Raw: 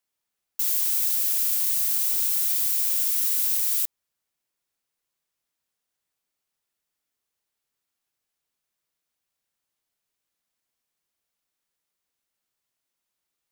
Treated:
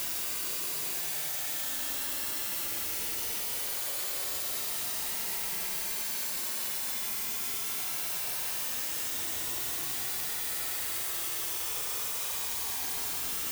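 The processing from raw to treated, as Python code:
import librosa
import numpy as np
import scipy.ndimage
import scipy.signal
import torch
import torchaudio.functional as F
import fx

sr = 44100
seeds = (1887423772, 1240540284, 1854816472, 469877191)

y = fx.schmitt(x, sr, flips_db=-35.5)
y = fx.paulstretch(y, sr, seeds[0], factor=38.0, window_s=0.05, from_s=2.56)
y = y * librosa.db_to_amplitude(-4.0)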